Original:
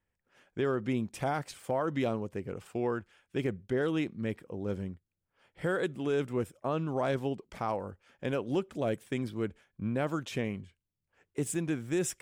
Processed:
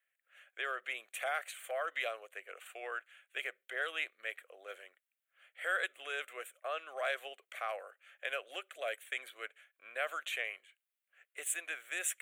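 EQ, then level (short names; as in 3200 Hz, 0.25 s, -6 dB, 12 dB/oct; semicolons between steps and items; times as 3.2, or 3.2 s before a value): steep high-pass 640 Hz 36 dB/oct; fixed phaser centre 2200 Hz, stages 4; +6.0 dB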